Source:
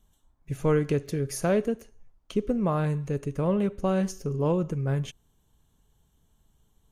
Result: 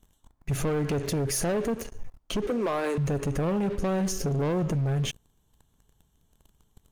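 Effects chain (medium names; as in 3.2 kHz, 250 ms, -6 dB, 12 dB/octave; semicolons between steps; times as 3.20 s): 2.47–2.98 s: steep high-pass 280 Hz 36 dB/octave; compression 2.5:1, threshold -29 dBFS, peak gain reduction 7.5 dB; waveshaping leveller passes 3; peak limiter -27.5 dBFS, peak gain reduction 9 dB; trim +5 dB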